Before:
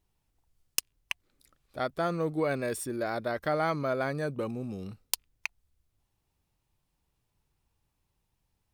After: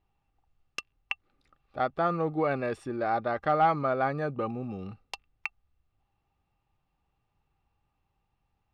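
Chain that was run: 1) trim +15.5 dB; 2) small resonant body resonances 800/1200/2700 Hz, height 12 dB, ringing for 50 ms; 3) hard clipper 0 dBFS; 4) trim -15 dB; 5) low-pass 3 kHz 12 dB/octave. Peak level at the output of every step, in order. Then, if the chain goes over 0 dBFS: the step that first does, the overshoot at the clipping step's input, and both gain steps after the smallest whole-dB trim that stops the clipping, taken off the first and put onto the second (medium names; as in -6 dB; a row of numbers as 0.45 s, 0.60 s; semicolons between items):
+5.5 dBFS, +6.0 dBFS, 0.0 dBFS, -15.0 dBFS, -14.5 dBFS; step 1, 6.0 dB; step 1 +9.5 dB, step 4 -9 dB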